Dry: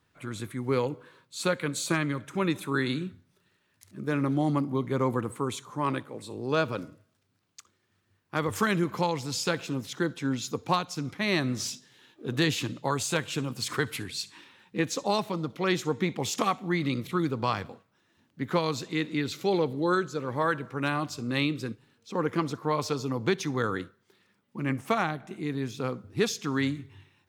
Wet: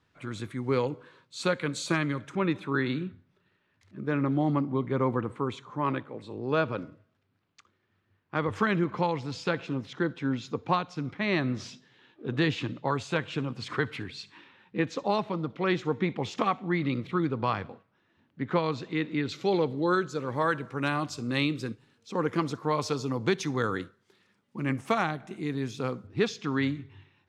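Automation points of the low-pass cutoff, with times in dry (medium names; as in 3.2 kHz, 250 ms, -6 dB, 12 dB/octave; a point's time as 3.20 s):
6.2 kHz
from 2.35 s 3 kHz
from 19.29 s 5.3 kHz
from 20.09 s 9.6 kHz
from 26.07 s 3.9 kHz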